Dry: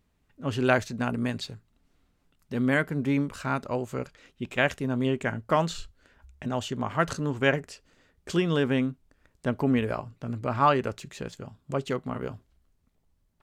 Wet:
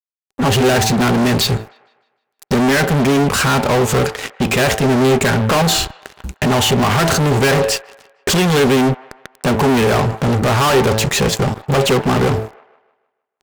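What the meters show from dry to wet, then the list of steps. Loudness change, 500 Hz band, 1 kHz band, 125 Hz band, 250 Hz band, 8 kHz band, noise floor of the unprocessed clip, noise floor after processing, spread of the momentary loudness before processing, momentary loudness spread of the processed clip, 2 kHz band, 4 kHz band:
+13.0 dB, +13.5 dB, +12.5 dB, +15.0 dB, +12.0 dB, +24.0 dB, −70 dBFS, −75 dBFS, 14 LU, 8 LU, +12.0 dB, +19.5 dB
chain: high-pass filter 62 Hz 12 dB per octave
parametric band 340 Hz −7 dB 0.54 octaves
hum removal 109.9 Hz, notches 9
in parallel at +1.5 dB: downward compressor, threshold −36 dBFS, peak gain reduction 18 dB
on the sum: fuzz pedal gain 41 dB, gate −49 dBFS
hollow resonant body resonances 400/780 Hz, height 7 dB
on a send: delay with a band-pass on its return 154 ms, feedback 42%, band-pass 1,200 Hz, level −18 dB

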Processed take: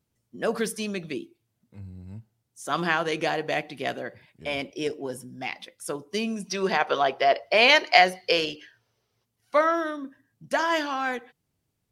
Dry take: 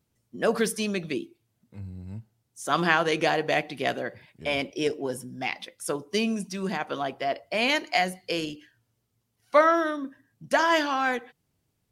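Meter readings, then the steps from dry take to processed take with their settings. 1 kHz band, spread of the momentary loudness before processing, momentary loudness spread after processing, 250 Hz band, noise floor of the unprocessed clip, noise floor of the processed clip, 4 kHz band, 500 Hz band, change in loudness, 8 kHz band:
+1.5 dB, 16 LU, 19 LU, −2.5 dB, −76 dBFS, −78 dBFS, +4.0 dB, +0.5 dB, +2.0 dB, −1.5 dB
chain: gain on a spectral selection 0:06.47–0:09.25, 350–6,300 Hz +10 dB
level −2.5 dB

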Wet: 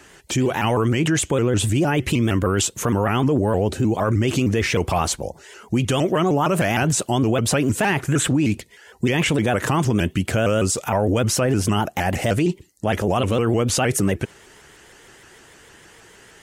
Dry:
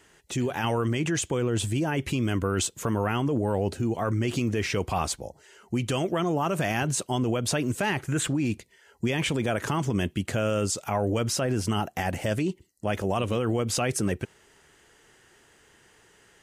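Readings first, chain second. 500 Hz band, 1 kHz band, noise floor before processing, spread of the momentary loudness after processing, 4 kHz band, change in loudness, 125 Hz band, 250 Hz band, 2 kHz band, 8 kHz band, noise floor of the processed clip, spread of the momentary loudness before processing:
+7.0 dB, +7.0 dB, −60 dBFS, 4 LU, +6.0 dB, +7.0 dB, +7.0 dB, +7.0 dB, +7.0 dB, +7.0 dB, −49 dBFS, 4 LU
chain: dynamic equaliser 4,800 Hz, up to −3 dB, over −44 dBFS, Q 1.7
in parallel at +2 dB: brickwall limiter −26 dBFS, peak gain reduction 11.5 dB
on the sum: pitch modulation by a square or saw wave saw up 6.5 Hz, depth 160 cents
level +3.5 dB

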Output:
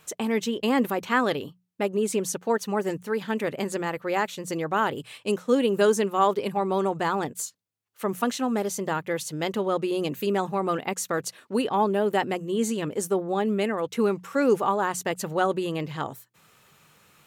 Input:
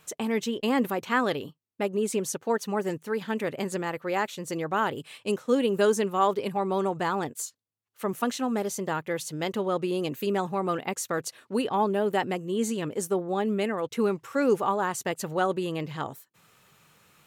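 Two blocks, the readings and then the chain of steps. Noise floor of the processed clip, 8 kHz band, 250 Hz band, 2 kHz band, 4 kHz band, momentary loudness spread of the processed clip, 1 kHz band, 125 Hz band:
−62 dBFS, +2.0 dB, +2.0 dB, +2.0 dB, +2.0 dB, 7 LU, +2.0 dB, +1.5 dB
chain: mains-hum notches 60/120/180 Hz
level +2 dB

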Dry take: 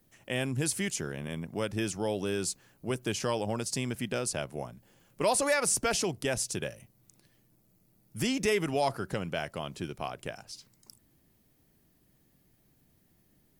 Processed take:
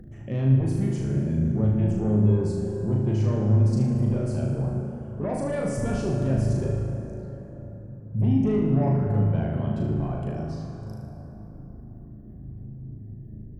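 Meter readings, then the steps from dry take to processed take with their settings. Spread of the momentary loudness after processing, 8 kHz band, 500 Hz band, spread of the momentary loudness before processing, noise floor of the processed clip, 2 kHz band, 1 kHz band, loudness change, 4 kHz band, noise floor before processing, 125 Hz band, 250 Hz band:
19 LU, −15.0 dB, +2.5 dB, 13 LU, −42 dBFS, −9.5 dB, −3.0 dB, +7.0 dB, below −10 dB, −68 dBFS, +17.0 dB, +10.5 dB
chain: gate on every frequency bin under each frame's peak −20 dB strong
high-pass filter 41 Hz
RIAA equalisation playback
mains-hum notches 50/100 Hz
in parallel at −6 dB: sine wavefolder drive 8 dB, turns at −13 dBFS
on the sum: downward compressor, threshold −22 dBFS, peak gain reduction 7 dB
brickwall limiter −20.5 dBFS, peak gain reduction 6 dB
upward compression, threshold −37 dBFS
tilt shelving filter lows +6 dB, about 650 Hz
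on a send: flutter between parallel walls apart 6.5 metres, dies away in 0.68 s
on the sum: dense smooth reverb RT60 4.1 s, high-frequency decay 0.45×, DRR 2.5 dB
level −7 dB

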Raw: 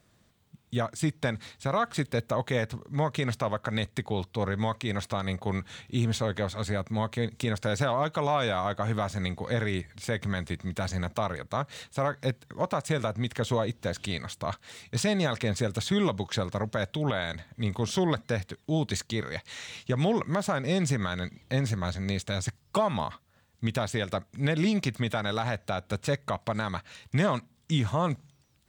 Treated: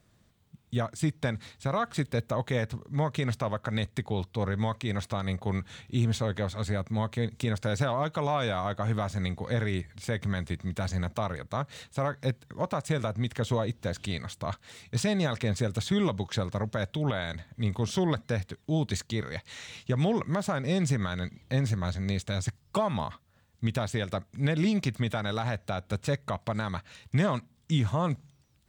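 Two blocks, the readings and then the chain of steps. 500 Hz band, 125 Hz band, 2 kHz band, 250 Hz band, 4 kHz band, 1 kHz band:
−2.0 dB, +1.0 dB, −2.5 dB, 0.0 dB, −2.5 dB, −2.5 dB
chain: low-shelf EQ 180 Hz +5.5 dB
level −2.5 dB

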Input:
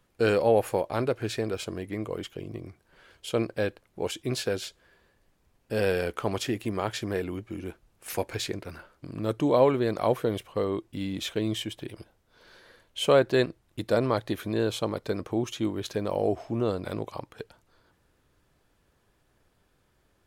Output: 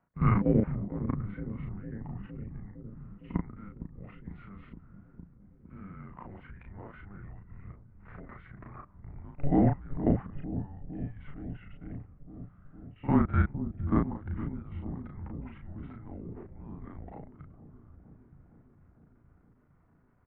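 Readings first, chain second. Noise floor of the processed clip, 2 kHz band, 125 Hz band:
−63 dBFS, −11.5 dB, +2.0 dB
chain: output level in coarse steps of 23 dB
on a send: delay with a low-pass on its return 459 ms, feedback 72%, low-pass 470 Hz, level −7 dB
on the sum: single-sideband voice off tune −300 Hz 150–2,200 Hz
double-tracking delay 35 ms −3.5 dB
echo ahead of the sound 51 ms −15 dB

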